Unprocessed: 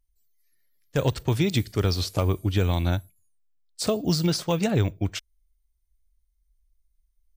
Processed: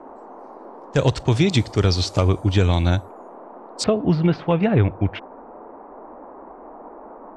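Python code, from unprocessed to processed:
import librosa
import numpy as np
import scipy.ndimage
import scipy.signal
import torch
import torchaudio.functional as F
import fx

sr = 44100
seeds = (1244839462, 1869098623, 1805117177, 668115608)

y = fx.dmg_noise_band(x, sr, seeds[0], low_hz=230.0, high_hz=1000.0, level_db=-46.0)
y = fx.lowpass(y, sr, hz=fx.steps((0.0, 7900.0), (3.84, 2600.0)), slope=24)
y = F.gain(torch.from_numpy(y), 5.5).numpy()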